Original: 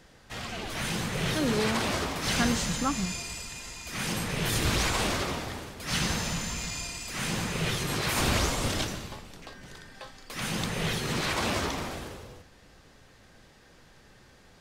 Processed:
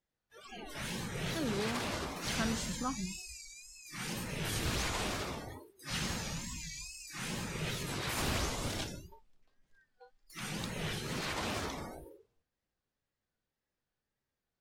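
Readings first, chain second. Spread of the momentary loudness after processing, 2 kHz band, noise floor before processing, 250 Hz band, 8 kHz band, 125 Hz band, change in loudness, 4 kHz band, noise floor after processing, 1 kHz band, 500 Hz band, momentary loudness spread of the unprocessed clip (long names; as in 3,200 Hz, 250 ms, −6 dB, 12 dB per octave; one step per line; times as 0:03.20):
14 LU, −8.5 dB, −56 dBFS, −8.0 dB, −8.0 dB, −8.0 dB, −8.0 dB, −8.5 dB, below −85 dBFS, −8.5 dB, −8.0 dB, 17 LU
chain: noise reduction from a noise print of the clip's start 26 dB
tape wow and flutter 110 cents
level −8 dB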